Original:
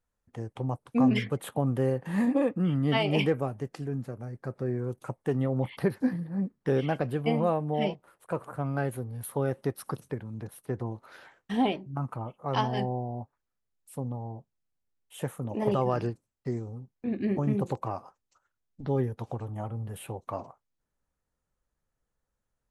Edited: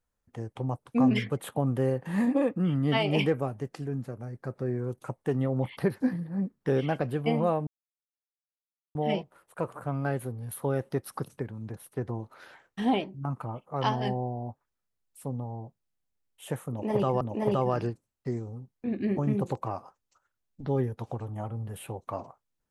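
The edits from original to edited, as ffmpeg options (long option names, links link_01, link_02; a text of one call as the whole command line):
ffmpeg -i in.wav -filter_complex "[0:a]asplit=3[link_01][link_02][link_03];[link_01]atrim=end=7.67,asetpts=PTS-STARTPTS,afade=type=out:start_time=7.666:duration=0.004:curve=hsin,apad=pad_dur=1.28[link_04];[link_02]atrim=start=7.67:end=15.932,asetpts=PTS-STARTPTS,afade=type=in:duration=0.004:curve=hsin[link_05];[link_03]atrim=start=15.408[link_06];[link_04][link_05]concat=n=2:v=0:a=1[link_07];[link_07][link_06]acrossfade=duration=0.004:curve1=hsin:curve2=hsin" out.wav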